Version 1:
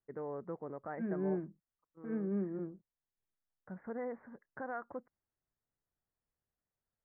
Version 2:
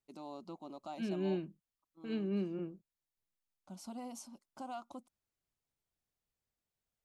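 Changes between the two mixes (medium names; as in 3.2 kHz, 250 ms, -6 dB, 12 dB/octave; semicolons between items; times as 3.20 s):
first voice: add static phaser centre 460 Hz, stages 6; master: remove steep low-pass 2 kHz 72 dB/octave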